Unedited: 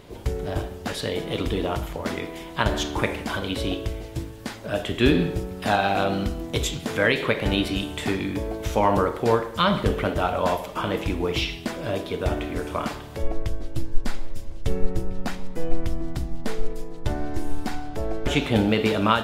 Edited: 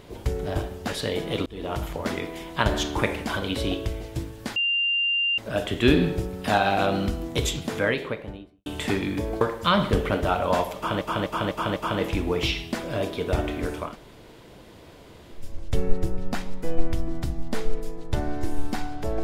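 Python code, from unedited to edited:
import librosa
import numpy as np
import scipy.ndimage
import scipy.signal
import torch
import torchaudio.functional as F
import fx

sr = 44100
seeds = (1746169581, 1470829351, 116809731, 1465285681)

y = fx.studio_fade_out(x, sr, start_s=6.69, length_s=1.15)
y = fx.edit(y, sr, fx.fade_in_span(start_s=1.46, length_s=0.37),
    fx.insert_tone(at_s=4.56, length_s=0.82, hz=2790.0, db=-20.5),
    fx.cut(start_s=8.59, length_s=0.75),
    fx.repeat(start_s=10.69, length_s=0.25, count=5),
    fx.room_tone_fill(start_s=12.79, length_s=1.57, crossfade_s=0.24), tone=tone)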